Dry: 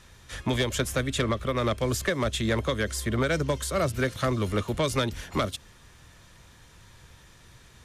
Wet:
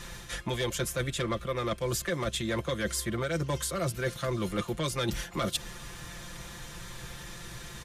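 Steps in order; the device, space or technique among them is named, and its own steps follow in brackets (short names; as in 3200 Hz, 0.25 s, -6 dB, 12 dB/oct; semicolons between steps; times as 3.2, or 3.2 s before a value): high shelf 10000 Hz +4.5 dB; comb 5.8 ms, depth 69%; compression on the reversed sound (reverse; compressor 8:1, threshold -37 dBFS, peak gain reduction 17.5 dB; reverse); gain +8.5 dB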